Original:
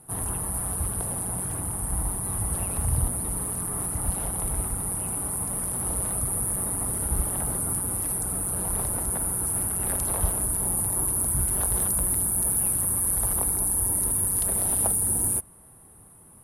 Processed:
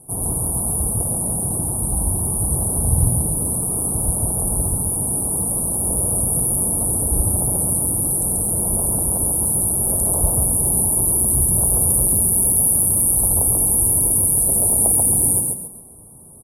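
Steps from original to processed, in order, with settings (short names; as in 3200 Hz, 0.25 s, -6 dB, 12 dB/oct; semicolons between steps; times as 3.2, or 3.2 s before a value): Chebyshev band-stop 650–8700 Hz, order 2; frequency-shifting echo 0.136 s, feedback 34%, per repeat +36 Hz, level -3 dB; gain +6.5 dB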